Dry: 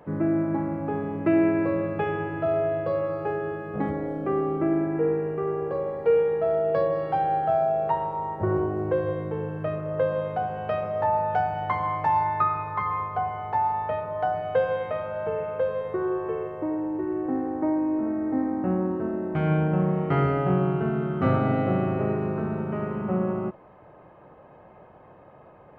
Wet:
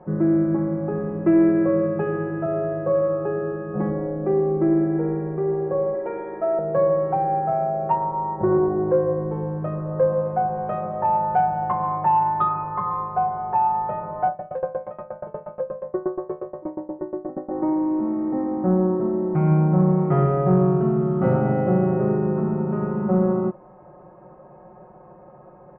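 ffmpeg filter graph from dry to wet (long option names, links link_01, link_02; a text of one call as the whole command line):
ffmpeg -i in.wav -filter_complex "[0:a]asettb=1/sr,asplit=3[link_01][link_02][link_03];[link_01]atrim=end=5.944[link_04];[link_02]atrim=start=5.94:end=6.59,asetpts=PTS-STARTPTS,afade=type=in:duration=0.004:curve=qsin,afade=type=out:start_time=0.646:duration=0.004:curve=qsin,lowshelf=frequency=130:gain=-10,aecho=1:1:3.1:0.81,atrim=end_sample=28665[link_05];[link_03]atrim=start=6.586[link_06];[link_04][link_05]acrossfade=duration=0.004:curve1=hsin:curve2=qsin[link_07];[link_07][link_06]acrossfade=duration=0.004:curve1=qsin:curve2=hsin,asettb=1/sr,asplit=3[link_08][link_09][link_10];[link_08]atrim=end=14.274[link_11];[link_09]atrim=start=14.27:end=17.51,asetpts=PTS-STARTPTS,afade=type=in:duration=0.004:curve=qsin,afade=type=out:start_time=3.236:duration=0.004:curve=qsin,aeval=exprs='val(0)+0.0224*sin(2*PI*590*n/s)':channel_layout=same,asoftclip=type=hard:threshold=-16dB,aeval=exprs='val(0)*pow(10,-24*if(lt(mod(8.4*n/s,1),2*abs(8.4)/1000),1-mod(8.4*n/s,1)/(2*abs(8.4)/1000),(mod(8.4*n/s,1)-2*abs(8.4)/1000)/(1-2*abs(8.4)/1000))/20)':channel_layout=same[link_12];[link_10]atrim=start=17.506[link_13];[link_11][link_12]acrossfade=duration=0.004:curve1=hsin:curve2=qsin[link_14];[link_14][link_13]acrossfade=duration=0.004:curve1=qsin:curve2=hsin,lowpass=1100,aecho=1:1:5.5:0.76,acontrast=50,volume=-3.5dB" out.wav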